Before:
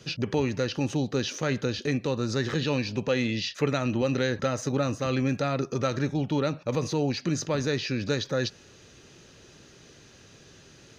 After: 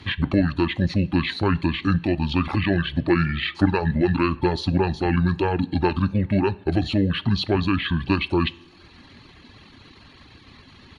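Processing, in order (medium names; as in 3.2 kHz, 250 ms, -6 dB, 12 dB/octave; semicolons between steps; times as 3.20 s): pitch shift -7 st; reverb removal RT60 0.76 s; two-slope reverb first 0.48 s, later 3.1 s, from -17 dB, DRR 17 dB; trim +7 dB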